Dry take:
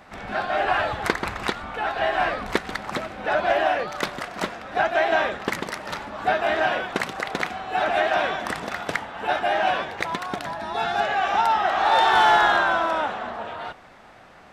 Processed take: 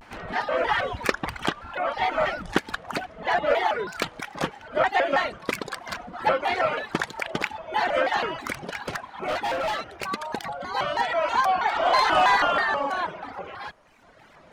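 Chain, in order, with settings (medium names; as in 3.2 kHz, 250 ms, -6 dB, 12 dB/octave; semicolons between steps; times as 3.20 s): tracing distortion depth 0.021 ms; on a send at -21 dB: reverberation, pre-delay 3 ms; on the sum: reverb removal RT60 1.3 s; 8.58–10.07 s: hard clipper -23.5 dBFS, distortion -19 dB; vibrato with a chosen wave square 3.1 Hz, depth 250 cents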